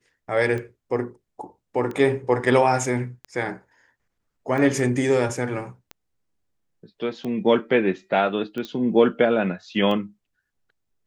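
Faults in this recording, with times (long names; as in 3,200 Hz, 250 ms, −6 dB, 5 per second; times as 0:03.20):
scratch tick 45 rpm −20 dBFS
0:08.65: click −19 dBFS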